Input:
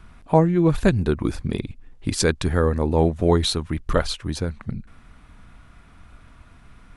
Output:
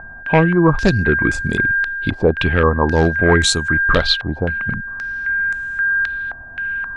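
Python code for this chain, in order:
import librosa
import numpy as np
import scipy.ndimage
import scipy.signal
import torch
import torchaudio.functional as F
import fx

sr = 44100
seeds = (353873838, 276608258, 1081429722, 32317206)

y = np.clip(10.0 ** (11.0 / 20.0) * x, -1.0, 1.0) / 10.0 ** (11.0 / 20.0)
y = y + 10.0 ** (-27.0 / 20.0) * np.sin(2.0 * np.pi * 1600.0 * np.arange(len(y)) / sr)
y = fx.filter_held_lowpass(y, sr, hz=3.8, low_hz=760.0, high_hz=7400.0)
y = y * 10.0 ** (4.0 / 20.0)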